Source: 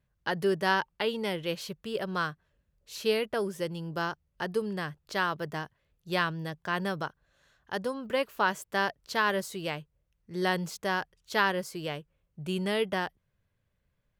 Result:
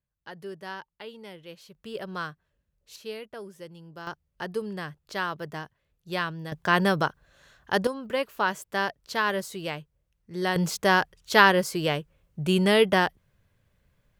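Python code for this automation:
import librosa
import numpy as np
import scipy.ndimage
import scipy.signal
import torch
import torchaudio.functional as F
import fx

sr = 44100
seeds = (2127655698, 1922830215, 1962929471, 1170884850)

y = fx.gain(x, sr, db=fx.steps((0.0, -12.0), (1.75, -3.0), (2.96, -10.0), (4.07, -1.0), (6.52, 9.0), (7.87, 1.0), (10.56, 9.0)))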